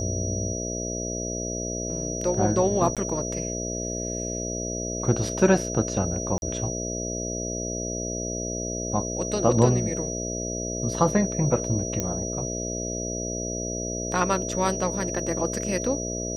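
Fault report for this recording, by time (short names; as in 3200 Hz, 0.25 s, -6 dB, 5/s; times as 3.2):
buzz 60 Hz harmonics 11 -32 dBFS
tone 5800 Hz -32 dBFS
2.95–2.97 gap 17 ms
6.38–6.42 gap 41 ms
12 pop -11 dBFS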